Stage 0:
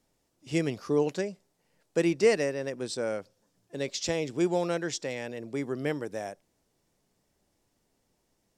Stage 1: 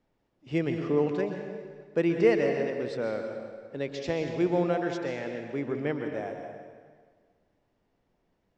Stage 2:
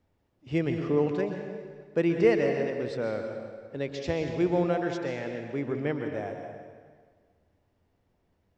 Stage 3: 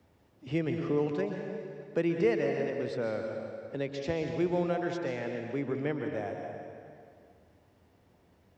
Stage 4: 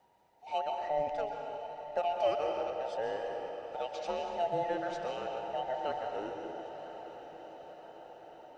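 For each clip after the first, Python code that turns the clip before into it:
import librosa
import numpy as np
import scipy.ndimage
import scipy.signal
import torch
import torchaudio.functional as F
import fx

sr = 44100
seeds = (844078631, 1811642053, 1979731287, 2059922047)

y1 = scipy.signal.sosfilt(scipy.signal.butter(2, 2600.0, 'lowpass', fs=sr, output='sos'), x)
y1 = fx.rev_plate(y1, sr, seeds[0], rt60_s=1.7, hf_ratio=0.85, predelay_ms=110, drr_db=4.5)
y2 = fx.peak_eq(y1, sr, hz=82.0, db=12.0, octaves=0.74)
y3 = scipy.signal.sosfilt(scipy.signal.butter(2, 58.0, 'highpass', fs=sr, output='sos'), y2)
y3 = fx.band_squash(y3, sr, depth_pct=40)
y3 = F.gain(torch.from_numpy(y3), -3.0).numpy()
y4 = fx.band_invert(y3, sr, width_hz=1000)
y4 = fx.echo_diffused(y4, sr, ms=993, feedback_pct=61, wet_db=-11.5)
y4 = F.gain(torch.from_numpy(y4), -3.5).numpy()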